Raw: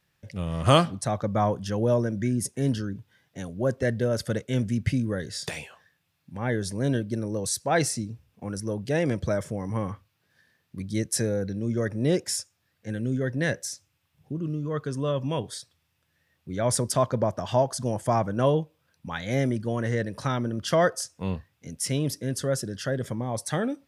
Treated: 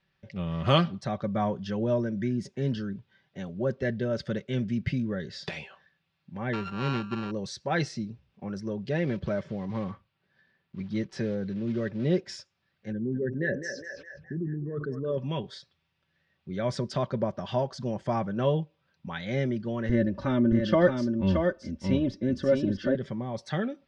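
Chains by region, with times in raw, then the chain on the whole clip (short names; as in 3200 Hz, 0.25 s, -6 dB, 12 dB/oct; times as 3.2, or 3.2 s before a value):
6.53–7.31 sample sorter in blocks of 32 samples + LPF 8500 Hz + high shelf 6300 Hz -11 dB
8.91–12.29 block floating point 5-bit + LPF 3400 Hz 6 dB/oct
12.92–15.18 formant sharpening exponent 2 + narrowing echo 0.208 s, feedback 58%, band-pass 1300 Hz, level -4.5 dB + sustainer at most 63 dB/s
19.89–22.95 tilt -3 dB/oct + comb 3.4 ms, depth 85% + echo 0.624 s -5 dB
whole clip: LPF 4600 Hz 24 dB/oct; dynamic EQ 850 Hz, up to -4 dB, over -36 dBFS, Q 0.87; comb 5.2 ms, depth 46%; gain -2.5 dB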